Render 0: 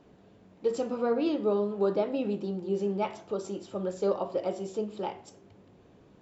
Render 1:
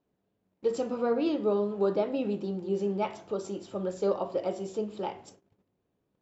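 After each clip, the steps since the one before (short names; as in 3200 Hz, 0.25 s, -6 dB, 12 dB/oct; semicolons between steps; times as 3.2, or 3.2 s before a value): gate -52 dBFS, range -21 dB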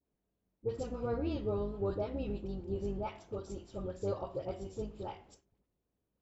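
octaver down 2 oct, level 0 dB; dispersion highs, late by 54 ms, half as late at 1100 Hz; gain -8.5 dB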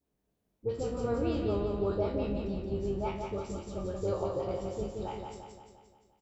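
spectral trails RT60 0.36 s; on a send: feedback echo 0.174 s, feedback 54%, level -4.5 dB; on the sum: gain +2 dB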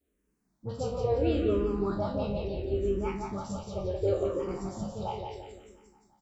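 endless phaser -0.72 Hz; gain +5.5 dB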